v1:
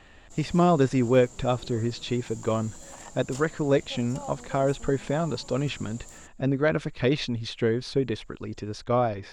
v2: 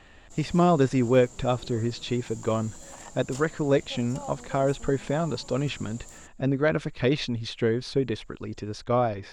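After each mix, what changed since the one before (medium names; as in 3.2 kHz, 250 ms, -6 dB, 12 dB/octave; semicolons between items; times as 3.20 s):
no change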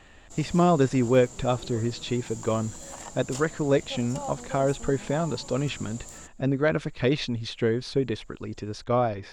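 background +4.0 dB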